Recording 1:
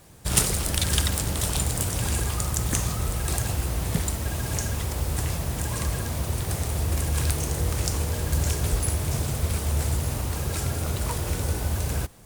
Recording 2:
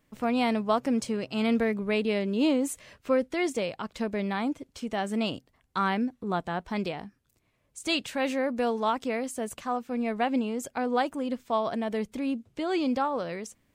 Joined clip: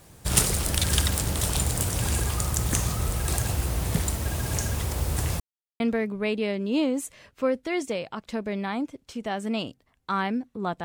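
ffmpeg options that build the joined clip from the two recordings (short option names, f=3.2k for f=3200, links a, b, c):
-filter_complex "[0:a]apad=whole_dur=10.84,atrim=end=10.84,asplit=2[a][b];[a]atrim=end=5.4,asetpts=PTS-STARTPTS,afade=t=out:st=5.396:d=0.004:c=hsin[c];[b]atrim=start=5.4:end=5.8,asetpts=PTS-STARTPTS,volume=0[d];[1:a]atrim=start=1.47:end=6.51,asetpts=PTS-STARTPTS,afade=t=in:d=0.004:c=hsin[e];[c][d][e]concat=n=3:v=0:a=1"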